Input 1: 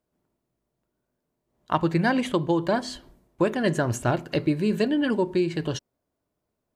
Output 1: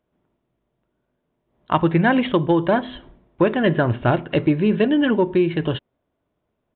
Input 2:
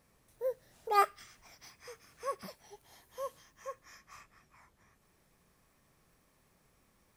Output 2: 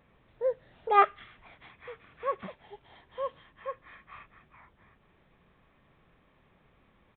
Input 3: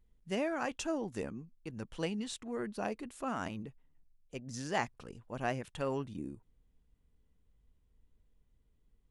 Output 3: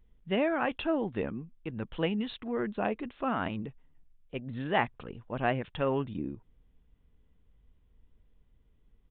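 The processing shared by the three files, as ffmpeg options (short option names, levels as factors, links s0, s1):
-af "asoftclip=type=tanh:threshold=0.335,aresample=8000,aresample=44100,volume=2"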